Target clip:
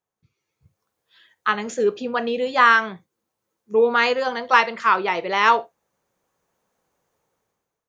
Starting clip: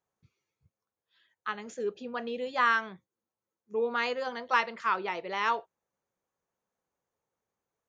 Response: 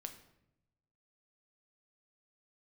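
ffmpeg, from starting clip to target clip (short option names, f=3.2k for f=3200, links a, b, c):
-filter_complex "[0:a]dynaudnorm=f=170:g=7:m=14.5dB,asplit=2[a][b];[1:a]atrim=start_sample=2205,atrim=end_sample=3528[c];[b][c]afir=irnorm=-1:irlink=0,volume=0dB[d];[a][d]amix=inputs=2:normalize=0,volume=-4.5dB"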